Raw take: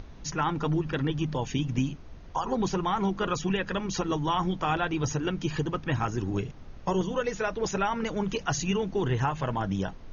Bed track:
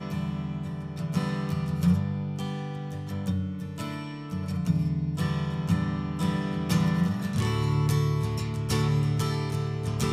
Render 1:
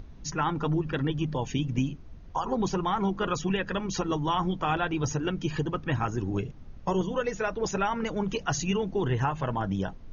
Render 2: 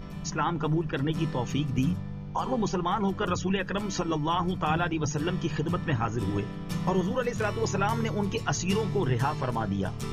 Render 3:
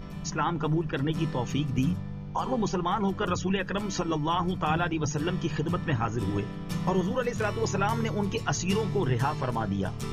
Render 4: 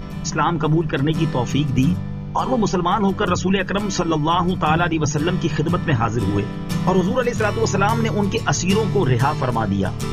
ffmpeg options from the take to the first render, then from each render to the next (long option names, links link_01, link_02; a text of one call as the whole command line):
ffmpeg -i in.wav -af "afftdn=noise_reduction=7:noise_floor=-45" out.wav
ffmpeg -i in.wav -i bed.wav -filter_complex "[1:a]volume=-8dB[link_01];[0:a][link_01]amix=inputs=2:normalize=0" out.wav
ffmpeg -i in.wav -af anull out.wav
ffmpeg -i in.wav -af "volume=9dB" out.wav